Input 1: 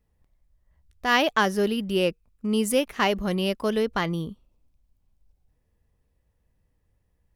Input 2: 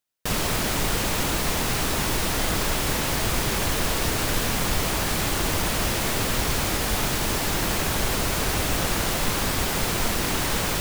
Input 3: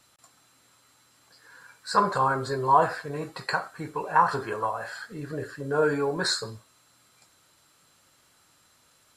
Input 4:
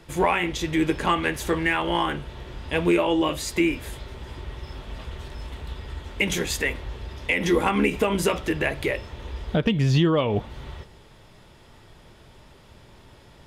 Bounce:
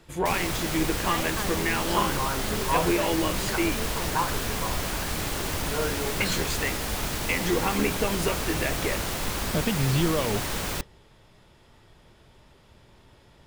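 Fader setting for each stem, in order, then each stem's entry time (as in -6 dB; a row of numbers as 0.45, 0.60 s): -13.5, -5.5, -7.0, -5.0 dB; 0.00, 0.00, 0.00, 0.00 s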